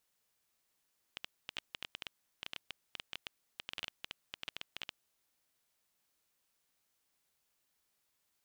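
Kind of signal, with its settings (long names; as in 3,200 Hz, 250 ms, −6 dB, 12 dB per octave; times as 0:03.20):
Geiger counter clicks 11 per second −23 dBFS 3.88 s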